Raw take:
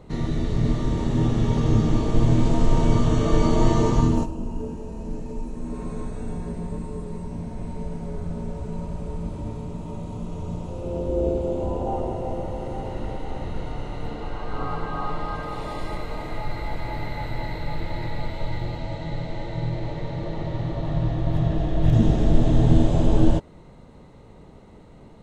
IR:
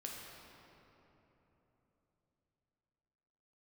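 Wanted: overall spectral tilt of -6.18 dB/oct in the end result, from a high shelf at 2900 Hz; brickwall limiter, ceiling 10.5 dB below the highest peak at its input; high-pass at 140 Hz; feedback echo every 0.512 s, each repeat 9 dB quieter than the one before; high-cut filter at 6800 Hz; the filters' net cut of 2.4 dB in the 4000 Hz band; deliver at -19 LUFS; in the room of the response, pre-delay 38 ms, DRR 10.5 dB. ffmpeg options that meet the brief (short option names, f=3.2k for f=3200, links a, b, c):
-filter_complex "[0:a]highpass=140,lowpass=6.8k,highshelf=f=2.9k:g=7.5,equalizer=f=4k:t=o:g=-8.5,alimiter=limit=-20dB:level=0:latency=1,aecho=1:1:512|1024|1536|2048:0.355|0.124|0.0435|0.0152,asplit=2[a][b];[1:a]atrim=start_sample=2205,adelay=38[c];[b][c]afir=irnorm=-1:irlink=0,volume=-9dB[d];[a][d]amix=inputs=2:normalize=0,volume=11dB"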